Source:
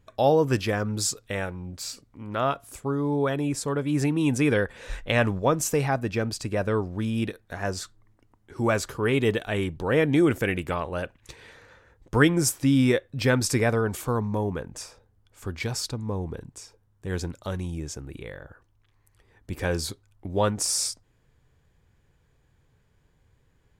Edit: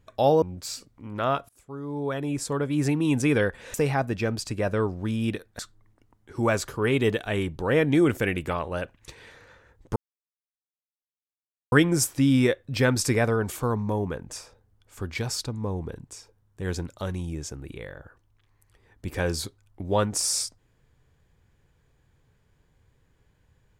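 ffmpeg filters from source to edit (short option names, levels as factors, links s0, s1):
-filter_complex "[0:a]asplit=6[s0][s1][s2][s3][s4][s5];[s0]atrim=end=0.422[s6];[s1]atrim=start=1.578:end=2.65,asetpts=PTS-STARTPTS,afade=t=out:st=1.068:d=0.004:c=hsin:silence=0.0707946[s7];[s2]atrim=start=2.65:end=4.902,asetpts=PTS-STARTPTS,afade=t=in:d=1.03:silence=0.0707946[s8];[s3]atrim=start=5.678:end=7.532[s9];[s4]atrim=start=7.798:end=12.17,asetpts=PTS-STARTPTS,afade=t=out:st=4.368:d=0.004:c=hsin,apad=pad_dur=1.76[s10];[s5]atrim=start=12.17,asetpts=PTS-STARTPTS,afade=t=in:d=0.004:c=hsin[s11];[s7][s8]concat=n=2:v=0:a=1[s12];[s6][s12]acrossfade=d=0.004:c1=hsin:c2=hsin[s13];[s13][s9]acrossfade=d=0.004:c1=hsin:c2=hsin[s14];[s10][s11]concat=n=2:v=0:a=1[s15];[s14][s15]acrossfade=d=0.004:c1=hsin:c2=hsin"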